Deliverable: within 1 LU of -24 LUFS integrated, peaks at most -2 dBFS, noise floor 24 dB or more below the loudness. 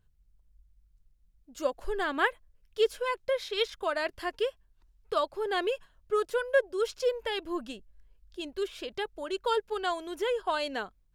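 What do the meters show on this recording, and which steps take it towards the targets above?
loudness -31.5 LUFS; peak level -13.0 dBFS; loudness target -24.0 LUFS
-> trim +7.5 dB

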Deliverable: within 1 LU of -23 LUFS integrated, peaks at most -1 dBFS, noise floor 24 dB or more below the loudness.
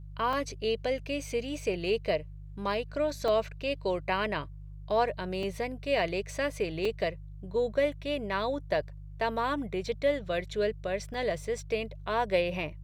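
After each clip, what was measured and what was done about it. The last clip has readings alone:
dropouts 5; longest dropout 3.4 ms; hum 50 Hz; highest harmonic 150 Hz; hum level -42 dBFS; loudness -31.5 LUFS; peak level -14.5 dBFS; loudness target -23.0 LUFS
-> interpolate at 0.33/3.28/5.43/6.85/11.14 s, 3.4 ms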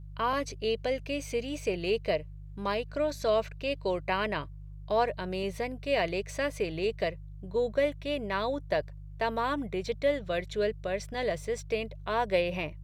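dropouts 0; hum 50 Hz; highest harmonic 150 Hz; hum level -42 dBFS
-> de-hum 50 Hz, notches 3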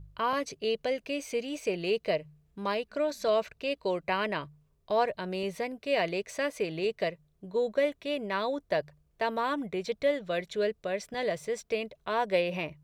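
hum not found; loudness -31.5 LUFS; peak level -14.5 dBFS; loudness target -23.0 LUFS
-> trim +8.5 dB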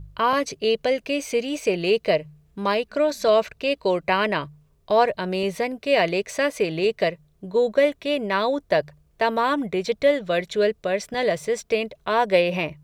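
loudness -23.0 LUFS; peak level -6.0 dBFS; noise floor -62 dBFS

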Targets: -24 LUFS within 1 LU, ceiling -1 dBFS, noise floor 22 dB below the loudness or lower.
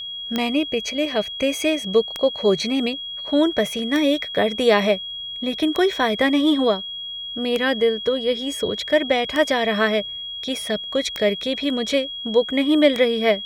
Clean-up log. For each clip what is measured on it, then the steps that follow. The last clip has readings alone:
clicks found 8; steady tone 3.3 kHz; tone level -29 dBFS; loudness -21.0 LUFS; peak level -3.5 dBFS; loudness target -24.0 LUFS
-> de-click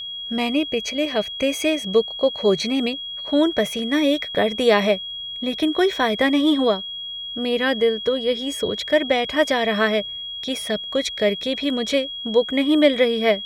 clicks found 0; steady tone 3.3 kHz; tone level -29 dBFS
-> band-stop 3.3 kHz, Q 30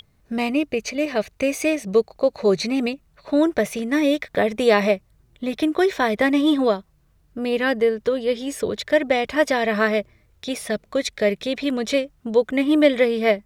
steady tone not found; loudness -21.5 LUFS; peak level -4.0 dBFS; loudness target -24.0 LUFS
-> trim -2.5 dB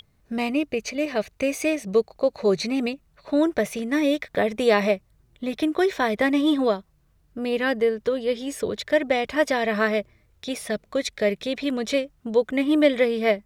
loudness -24.0 LUFS; peak level -6.5 dBFS; noise floor -63 dBFS

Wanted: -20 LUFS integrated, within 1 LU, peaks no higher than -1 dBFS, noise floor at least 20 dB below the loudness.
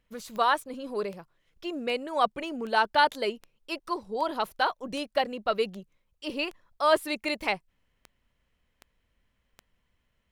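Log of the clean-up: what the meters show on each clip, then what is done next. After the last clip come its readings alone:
clicks found 13; loudness -29.0 LUFS; peak level -9.0 dBFS; loudness target -20.0 LUFS
-> de-click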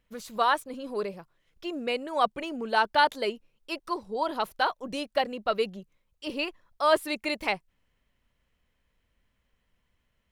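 clicks found 0; loudness -29.0 LUFS; peak level -9.0 dBFS; loudness target -20.0 LUFS
-> trim +9 dB; peak limiter -1 dBFS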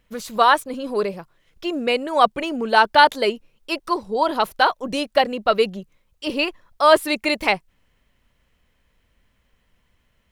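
loudness -20.0 LUFS; peak level -1.0 dBFS; noise floor -66 dBFS

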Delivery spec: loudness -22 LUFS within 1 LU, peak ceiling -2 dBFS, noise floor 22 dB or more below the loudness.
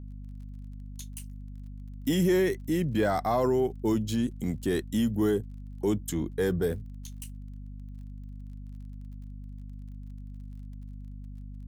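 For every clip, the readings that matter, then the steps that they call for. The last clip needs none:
tick rate 28 per s; hum 50 Hz; highest harmonic 250 Hz; hum level -39 dBFS; loudness -28.0 LUFS; peak level -15.5 dBFS; loudness target -22.0 LUFS
-> de-click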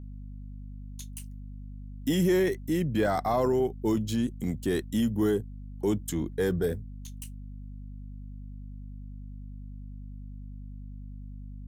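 tick rate 0.94 per s; hum 50 Hz; highest harmonic 250 Hz; hum level -39 dBFS
-> de-hum 50 Hz, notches 5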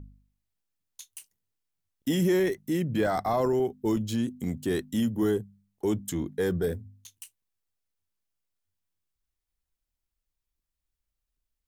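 hum not found; loudness -28.5 LUFS; peak level -14.5 dBFS; loudness target -22.0 LUFS
-> trim +6.5 dB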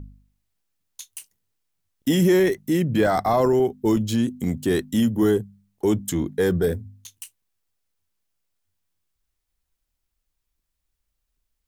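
loudness -22.0 LUFS; peak level -8.0 dBFS; noise floor -79 dBFS

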